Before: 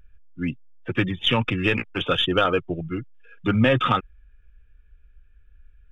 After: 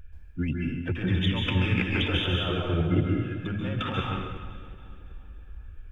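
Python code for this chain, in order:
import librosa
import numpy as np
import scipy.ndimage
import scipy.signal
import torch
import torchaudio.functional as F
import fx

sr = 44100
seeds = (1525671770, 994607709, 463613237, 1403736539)

y = fx.over_compress(x, sr, threshold_db=-29.0, ratio=-1.0)
y = fx.peak_eq(y, sr, hz=82.0, db=11.5, octaves=0.54)
y = fx.notch(y, sr, hz=1200.0, q=16.0)
y = fx.echo_split(y, sr, split_hz=1200.0, low_ms=375, high_ms=280, feedback_pct=52, wet_db=-16.0)
y = fx.rev_plate(y, sr, seeds[0], rt60_s=1.1, hf_ratio=0.95, predelay_ms=120, drr_db=-1.5)
y = y * librosa.db_to_amplitude(-2.0)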